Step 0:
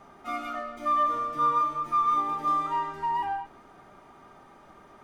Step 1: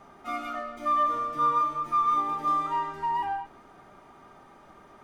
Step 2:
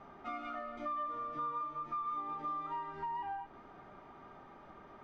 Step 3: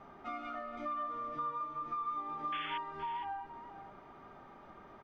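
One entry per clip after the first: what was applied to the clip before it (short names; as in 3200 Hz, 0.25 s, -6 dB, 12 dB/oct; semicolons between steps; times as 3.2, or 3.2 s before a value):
nothing audible
compressor 3:1, threshold -38 dBFS, peak gain reduction 12.5 dB; air absorption 180 m; gain -1.5 dB
painted sound noise, 2.52–2.78, 1400–3500 Hz -43 dBFS; echo 0.469 s -12.5 dB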